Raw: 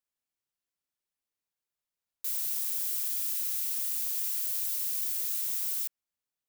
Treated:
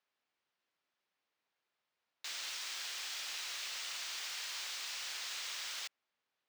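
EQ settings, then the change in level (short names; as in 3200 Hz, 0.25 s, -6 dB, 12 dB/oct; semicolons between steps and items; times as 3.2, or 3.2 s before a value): HPF 520 Hz 6 dB/oct; air absorption 170 m; high shelf 7400 Hz -7 dB; +12.5 dB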